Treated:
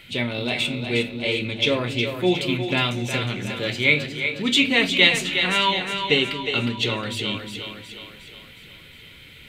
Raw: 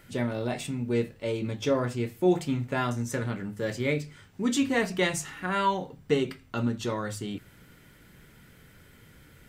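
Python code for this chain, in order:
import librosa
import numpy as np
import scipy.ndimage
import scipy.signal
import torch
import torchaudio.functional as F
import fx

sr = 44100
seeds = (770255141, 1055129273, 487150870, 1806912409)

y = fx.band_shelf(x, sr, hz=3000.0, db=15.5, octaves=1.2)
y = fx.echo_split(y, sr, split_hz=340.0, low_ms=224, high_ms=361, feedback_pct=52, wet_db=-7)
y = F.gain(torch.from_numpy(y), 2.0).numpy()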